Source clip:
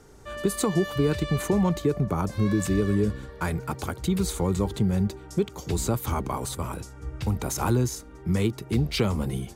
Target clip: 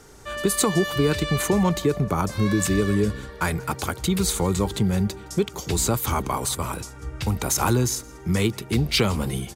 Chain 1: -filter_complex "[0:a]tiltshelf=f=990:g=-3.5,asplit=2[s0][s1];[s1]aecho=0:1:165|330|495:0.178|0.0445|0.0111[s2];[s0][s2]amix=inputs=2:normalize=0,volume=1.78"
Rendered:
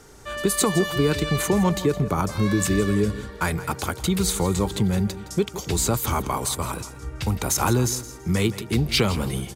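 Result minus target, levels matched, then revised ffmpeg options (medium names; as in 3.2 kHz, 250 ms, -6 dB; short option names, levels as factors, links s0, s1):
echo-to-direct +9.5 dB
-filter_complex "[0:a]tiltshelf=f=990:g=-3.5,asplit=2[s0][s1];[s1]aecho=0:1:165|330:0.0596|0.0149[s2];[s0][s2]amix=inputs=2:normalize=0,volume=1.78"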